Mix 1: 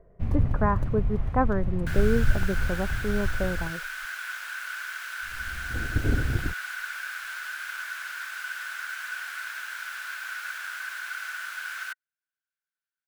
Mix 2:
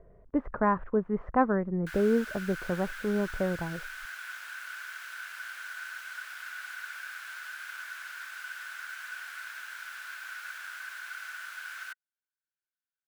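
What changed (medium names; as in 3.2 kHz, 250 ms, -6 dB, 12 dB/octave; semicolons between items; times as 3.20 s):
first sound: muted; second sound -6.0 dB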